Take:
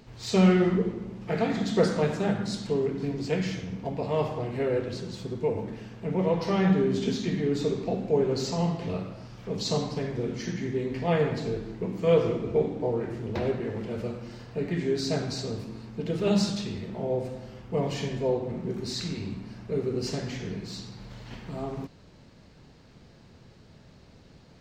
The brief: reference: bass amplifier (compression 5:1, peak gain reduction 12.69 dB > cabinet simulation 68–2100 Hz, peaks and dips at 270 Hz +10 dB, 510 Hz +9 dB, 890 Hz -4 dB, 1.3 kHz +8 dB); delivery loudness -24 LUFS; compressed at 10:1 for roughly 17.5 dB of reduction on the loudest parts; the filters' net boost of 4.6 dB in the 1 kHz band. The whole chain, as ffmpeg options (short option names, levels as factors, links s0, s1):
-af "equalizer=f=1000:t=o:g=4.5,acompressor=threshold=0.0224:ratio=10,acompressor=threshold=0.00631:ratio=5,highpass=f=68:w=0.5412,highpass=f=68:w=1.3066,equalizer=f=270:t=q:w=4:g=10,equalizer=f=510:t=q:w=4:g=9,equalizer=f=890:t=q:w=4:g=-4,equalizer=f=1300:t=q:w=4:g=8,lowpass=f=2100:w=0.5412,lowpass=f=2100:w=1.3066,volume=9.44"